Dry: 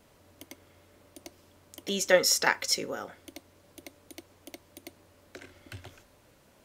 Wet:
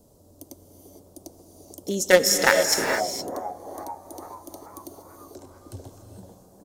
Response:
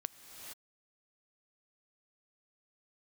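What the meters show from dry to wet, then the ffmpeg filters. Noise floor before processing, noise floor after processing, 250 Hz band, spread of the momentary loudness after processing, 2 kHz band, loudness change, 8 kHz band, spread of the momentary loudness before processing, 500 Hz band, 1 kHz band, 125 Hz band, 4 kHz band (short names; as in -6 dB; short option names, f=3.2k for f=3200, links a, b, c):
-62 dBFS, -55 dBFS, +7.5 dB, 22 LU, +6.5 dB, +5.0 dB, +5.5 dB, 19 LU, +7.5 dB, +7.5 dB, +7.0 dB, +3.5 dB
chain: -filter_complex "[0:a]acrossover=split=830|4900[a][b][c];[a]asplit=8[d][e][f][g][h][i][j][k];[e]adelay=439,afreqshift=95,volume=-8dB[l];[f]adelay=878,afreqshift=190,volume=-12.7dB[m];[g]adelay=1317,afreqshift=285,volume=-17.5dB[n];[h]adelay=1756,afreqshift=380,volume=-22.2dB[o];[i]adelay=2195,afreqshift=475,volume=-26.9dB[p];[j]adelay=2634,afreqshift=570,volume=-31.7dB[q];[k]adelay=3073,afreqshift=665,volume=-36.4dB[r];[d][l][m][n][o][p][q][r]amix=inputs=8:normalize=0[s];[b]acrusher=bits=3:mix=0:aa=0.5[t];[s][t][c]amix=inputs=3:normalize=0[u];[1:a]atrim=start_sample=2205[v];[u][v]afir=irnorm=-1:irlink=0,volume=8.5dB"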